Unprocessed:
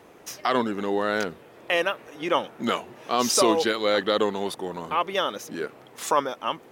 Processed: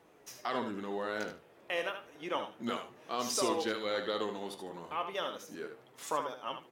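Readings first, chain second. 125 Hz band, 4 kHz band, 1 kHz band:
−11.0 dB, −11.0 dB, −11.0 dB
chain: repeating echo 75 ms, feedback 16%, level −8 dB
flanger 0.32 Hz, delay 5.9 ms, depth 9 ms, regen +64%
level −7.5 dB

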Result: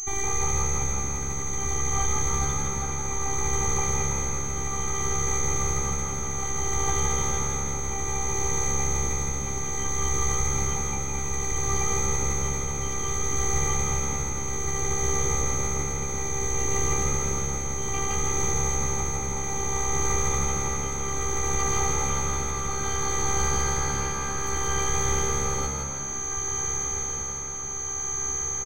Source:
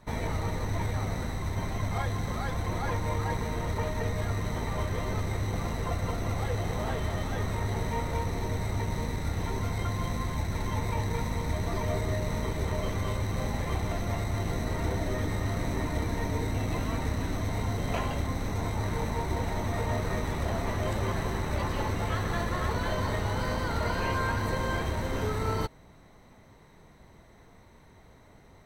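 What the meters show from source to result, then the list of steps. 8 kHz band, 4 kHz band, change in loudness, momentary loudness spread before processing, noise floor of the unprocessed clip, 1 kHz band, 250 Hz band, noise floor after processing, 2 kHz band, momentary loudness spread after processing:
+23.5 dB, +2.5 dB, +5.0 dB, 2 LU, −55 dBFS, +3.5 dB, −1.5 dB, −30 dBFS, +2.5 dB, 4 LU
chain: high-pass filter 48 Hz 6 dB per octave
comb filter 0.9 ms, depth 94%
in parallel at −2.5 dB: compressor whose output falls as the input rises −31 dBFS, ratio −1
on the sum: feedback delay with all-pass diffusion 1,842 ms, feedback 69%, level −10 dB
steady tone 6,200 Hz −24 dBFS
shaped tremolo triangle 0.61 Hz, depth 55%
phases set to zero 394 Hz
on a send: echo with shifted repeats 164 ms, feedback 48%, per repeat +69 Hz, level −4.5 dB

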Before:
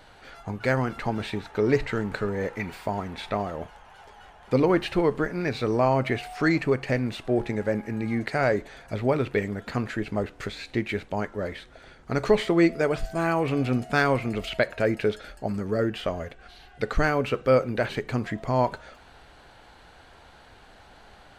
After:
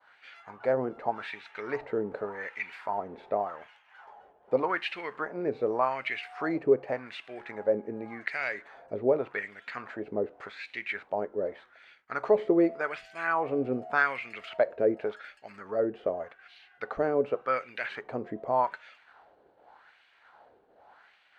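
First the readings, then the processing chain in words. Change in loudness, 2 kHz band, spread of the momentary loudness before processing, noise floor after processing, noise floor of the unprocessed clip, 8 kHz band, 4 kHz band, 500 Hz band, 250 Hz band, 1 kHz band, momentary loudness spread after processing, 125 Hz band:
−4.5 dB, −3.5 dB, 10 LU, −63 dBFS, −52 dBFS, below −15 dB, −8.5 dB, −3.5 dB, −8.0 dB, −2.5 dB, 13 LU, −18.0 dB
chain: LFO wah 0.86 Hz 420–2,500 Hz, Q 2.2
downward expander −55 dBFS
level +2.5 dB

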